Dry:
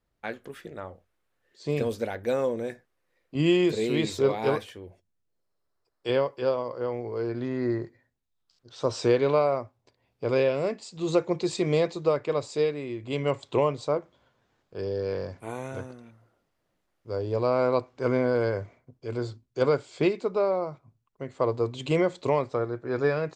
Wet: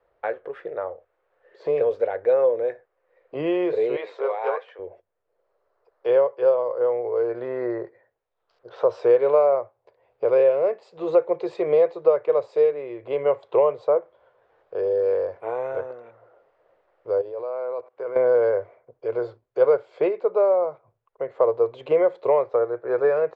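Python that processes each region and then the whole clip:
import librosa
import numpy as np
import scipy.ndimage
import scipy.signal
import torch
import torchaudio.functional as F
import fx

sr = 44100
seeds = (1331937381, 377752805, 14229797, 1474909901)

y = fx.chain(x, sr, fx.highpass(hz=740.0, slope=12),
    fx.air_absorb(metres=71.0), at=(3.96, 4.79))
y = fx.chain(y, sr, fx.highpass(hz=280.0, slope=6),
    fx.level_steps(step_db=20), at=(17.21, 18.16))
y = scipy.signal.sosfilt(scipy.signal.butter(2, 1700.0, 'lowpass', fs=sr, output='sos'), y)
y = fx.low_shelf_res(y, sr, hz=340.0, db=-12.5, q=3.0)
y = fx.band_squash(y, sr, depth_pct=40)
y = y * 10.0 ** (1.5 / 20.0)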